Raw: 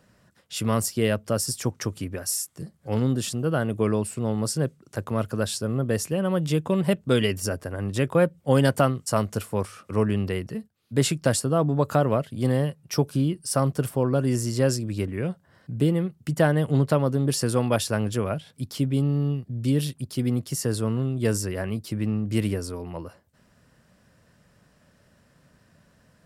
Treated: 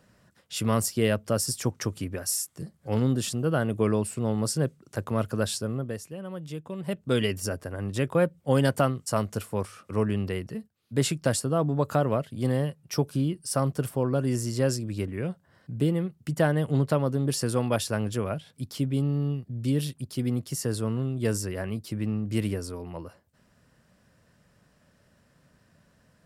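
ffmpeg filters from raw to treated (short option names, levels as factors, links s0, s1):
-af "volume=2.82,afade=t=out:st=5.52:d=0.49:silence=0.251189,afade=t=in:st=6.78:d=0.4:silence=0.316228"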